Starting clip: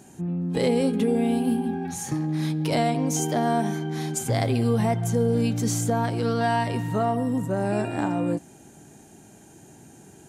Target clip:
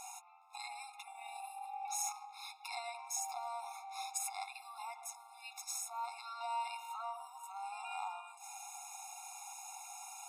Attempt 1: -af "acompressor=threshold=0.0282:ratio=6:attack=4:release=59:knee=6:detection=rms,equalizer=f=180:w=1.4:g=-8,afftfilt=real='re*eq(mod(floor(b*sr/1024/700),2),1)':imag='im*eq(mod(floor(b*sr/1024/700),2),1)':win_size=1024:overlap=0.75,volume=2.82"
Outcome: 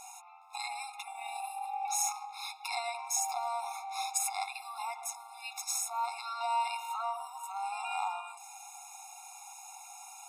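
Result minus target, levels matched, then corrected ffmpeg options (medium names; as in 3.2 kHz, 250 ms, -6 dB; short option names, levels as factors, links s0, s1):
compression: peak gain reduction -7.5 dB
-af "acompressor=threshold=0.01:ratio=6:attack=4:release=59:knee=6:detection=rms,equalizer=f=180:w=1.4:g=-8,afftfilt=real='re*eq(mod(floor(b*sr/1024/700),2),1)':imag='im*eq(mod(floor(b*sr/1024/700),2),1)':win_size=1024:overlap=0.75,volume=2.82"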